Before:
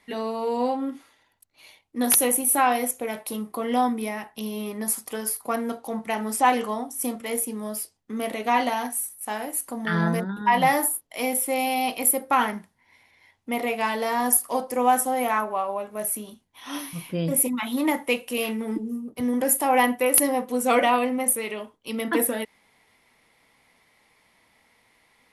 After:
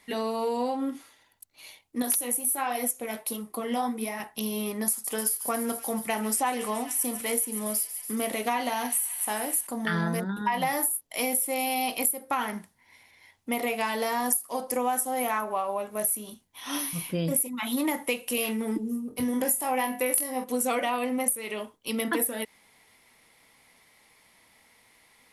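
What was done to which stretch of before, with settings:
2.02–4.20 s: flange 1.4 Hz, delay 0.8 ms, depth 9.8 ms, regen +48%
4.90–9.67 s: feedback echo behind a high-pass 141 ms, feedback 79%, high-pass 2.3 kHz, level -13.5 dB
19.08–20.44 s: flutter echo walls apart 4 m, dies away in 0.23 s
whole clip: treble shelf 5 kHz +8.5 dB; compression 6:1, threshold -24 dBFS

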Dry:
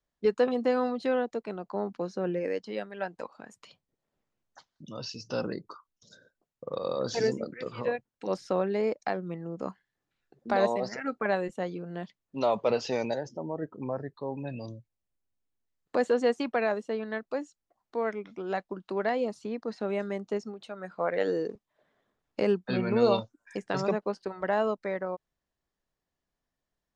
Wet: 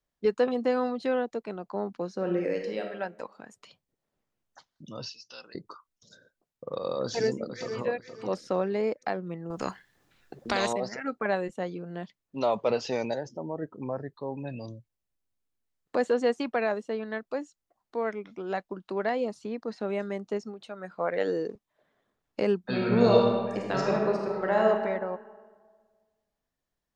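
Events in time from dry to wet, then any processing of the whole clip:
2.14–2.87 s: reverb throw, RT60 0.89 s, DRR 2.5 dB
5.09–5.55 s: band-pass filter 3.7 kHz, Q 1.3
7.02–7.87 s: echo throw 470 ms, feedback 25%, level -9 dB
9.50–10.73 s: spectrum-flattening compressor 2:1
22.60–24.65 s: reverb throw, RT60 1.6 s, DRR -1 dB

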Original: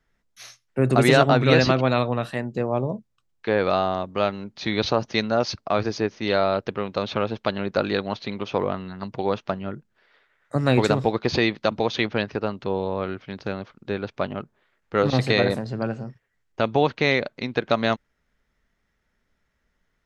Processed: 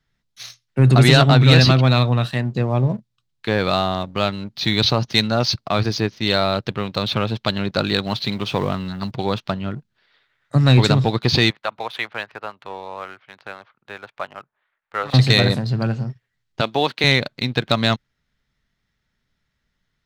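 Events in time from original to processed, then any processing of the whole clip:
8.06–9.11 s: companding laws mixed up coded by mu
11.50–15.14 s: three-band isolator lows -23 dB, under 580 Hz, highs -21 dB, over 2.4 kHz
16.61–17.04 s: high-pass 300 Hz
whole clip: graphic EQ 125/500/4000 Hz +9/-4/+9 dB; waveshaping leveller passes 1; trim -1 dB

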